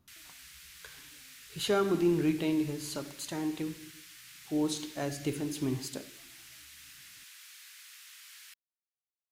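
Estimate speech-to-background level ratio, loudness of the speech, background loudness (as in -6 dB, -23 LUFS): 17.0 dB, -32.5 LUFS, -49.5 LUFS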